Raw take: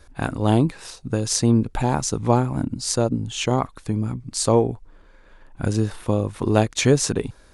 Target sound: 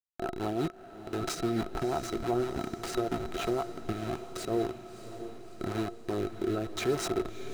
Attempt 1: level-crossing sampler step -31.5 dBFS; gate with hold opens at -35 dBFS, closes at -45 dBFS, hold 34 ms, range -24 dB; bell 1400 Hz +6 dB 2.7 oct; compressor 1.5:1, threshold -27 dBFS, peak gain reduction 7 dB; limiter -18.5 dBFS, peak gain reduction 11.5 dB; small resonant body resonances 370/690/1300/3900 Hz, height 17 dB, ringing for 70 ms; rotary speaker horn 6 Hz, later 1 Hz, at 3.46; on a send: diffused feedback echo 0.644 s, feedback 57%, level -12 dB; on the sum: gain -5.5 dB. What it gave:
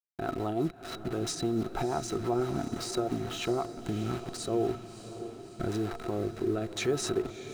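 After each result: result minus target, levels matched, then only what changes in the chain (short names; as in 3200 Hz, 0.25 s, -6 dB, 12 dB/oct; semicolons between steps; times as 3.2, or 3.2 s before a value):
level-crossing sampler: distortion -12 dB; compressor: peak gain reduction -3 dB
change: level-crossing sampler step -20 dBFS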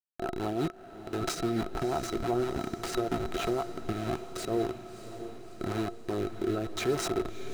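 compressor: peak gain reduction -3 dB
change: compressor 1.5:1, threshold -36.5 dBFS, peak gain reduction 10 dB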